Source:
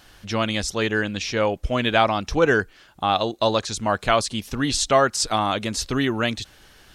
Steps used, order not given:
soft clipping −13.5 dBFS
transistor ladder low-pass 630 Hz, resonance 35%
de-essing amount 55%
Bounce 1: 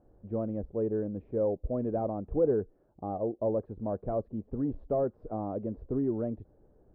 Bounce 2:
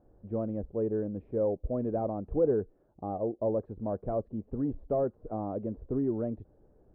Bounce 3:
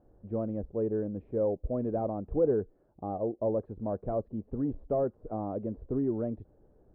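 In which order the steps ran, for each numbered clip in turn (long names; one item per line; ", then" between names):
soft clipping, then transistor ladder low-pass, then de-essing
de-essing, then soft clipping, then transistor ladder low-pass
soft clipping, then de-essing, then transistor ladder low-pass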